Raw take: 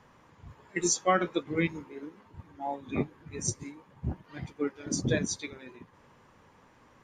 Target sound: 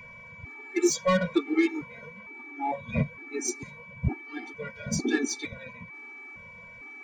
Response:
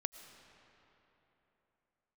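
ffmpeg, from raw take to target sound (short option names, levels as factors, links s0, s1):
-filter_complex "[0:a]highshelf=f=5500:g=-7,acrossover=split=350[s0][s1];[s1]asoftclip=type=tanh:threshold=0.0473[s2];[s0][s2]amix=inputs=2:normalize=0,aeval=exprs='val(0)+0.00501*sin(2*PI*2300*n/s)':c=same,afftfilt=real='re*gt(sin(2*PI*1.1*pts/sr)*(1-2*mod(floor(b*sr/1024/230),2)),0)':imag='im*gt(sin(2*PI*1.1*pts/sr)*(1-2*mod(floor(b*sr/1024/230),2)),0)':win_size=1024:overlap=0.75,volume=2.66"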